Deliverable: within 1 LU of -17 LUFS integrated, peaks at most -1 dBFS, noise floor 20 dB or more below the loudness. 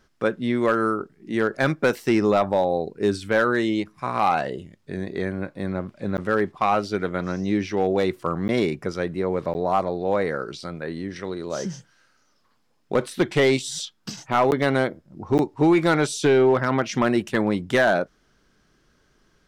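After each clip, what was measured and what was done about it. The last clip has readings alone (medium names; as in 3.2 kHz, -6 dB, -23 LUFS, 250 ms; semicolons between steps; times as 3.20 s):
clipped samples 0.4%; clipping level -11.5 dBFS; dropouts 5; longest dropout 9.9 ms; loudness -23.5 LUFS; peak level -11.5 dBFS; loudness target -17.0 LUFS
-> clip repair -11.5 dBFS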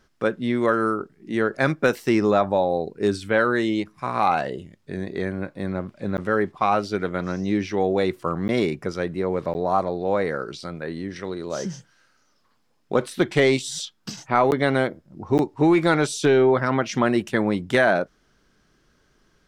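clipped samples 0.0%; dropouts 5; longest dropout 9.9 ms
-> interpolate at 6.17/8.48/9.54/14.51/15.38 s, 9.9 ms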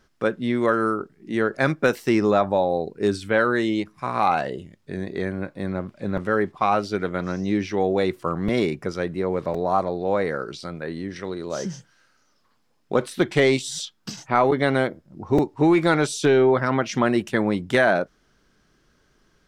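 dropouts 0; loudness -23.0 LUFS; peak level -4.5 dBFS; loudness target -17.0 LUFS
-> trim +6 dB; peak limiter -1 dBFS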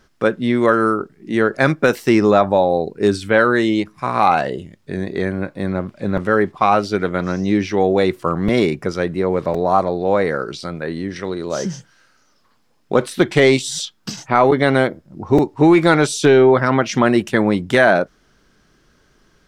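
loudness -17.0 LUFS; peak level -1.0 dBFS; noise floor -58 dBFS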